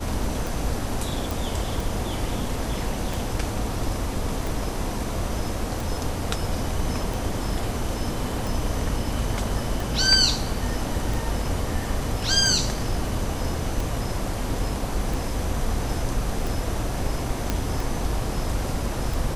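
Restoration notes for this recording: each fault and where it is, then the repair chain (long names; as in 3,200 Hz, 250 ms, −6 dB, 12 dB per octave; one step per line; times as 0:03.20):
scratch tick 45 rpm
0:01.31: click
0:17.50: click −9 dBFS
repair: click removal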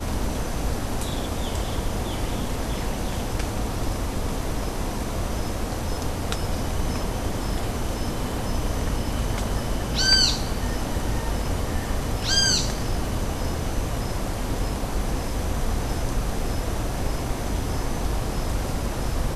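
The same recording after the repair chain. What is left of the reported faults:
0:17.50: click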